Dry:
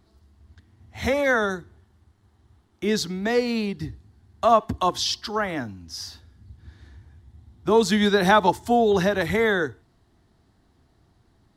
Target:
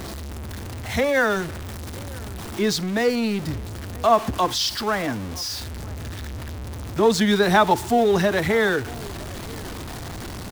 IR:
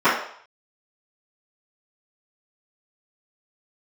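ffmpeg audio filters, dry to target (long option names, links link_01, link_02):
-filter_complex "[0:a]aeval=exprs='val(0)+0.5*0.0422*sgn(val(0))':channel_layout=same,asplit=2[link_01][link_02];[link_02]adelay=1050,volume=-22dB,highshelf=frequency=4000:gain=-23.6[link_03];[link_01][link_03]amix=inputs=2:normalize=0,atempo=1.1"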